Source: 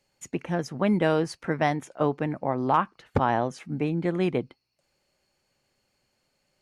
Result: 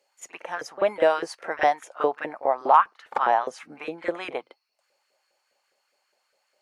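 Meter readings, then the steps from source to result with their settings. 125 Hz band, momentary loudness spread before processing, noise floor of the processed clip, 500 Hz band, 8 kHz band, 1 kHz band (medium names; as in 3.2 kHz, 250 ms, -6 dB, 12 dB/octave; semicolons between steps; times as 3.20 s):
under -20 dB, 7 LU, -74 dBFS, +2.0 dB, no reading, +5.5 dB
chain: LFO high-pass saw up 4.9 Hz 440–1600 Hz; pre-echo 41 ms -16 dB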